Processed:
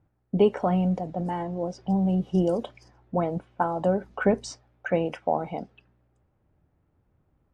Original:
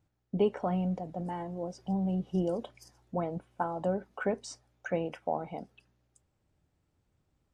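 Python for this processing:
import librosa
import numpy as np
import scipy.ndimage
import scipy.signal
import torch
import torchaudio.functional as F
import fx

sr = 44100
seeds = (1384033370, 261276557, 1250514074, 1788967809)

y = fx.env_lowpass(x, sr, base_hz=1600.0, full_db=-29.5)
y = fx.low_shelf(y, sr, hz=170.0, db=10.0, at=(4.04, 4.51))
y = y * 10.0 ** (7.0 / 20.0)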